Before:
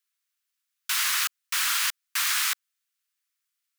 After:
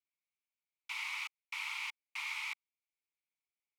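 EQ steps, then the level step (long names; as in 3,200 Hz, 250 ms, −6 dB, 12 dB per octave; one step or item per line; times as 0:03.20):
formant filter u
low-shelf EQ 490 Hz −10 dB
+6.0 dB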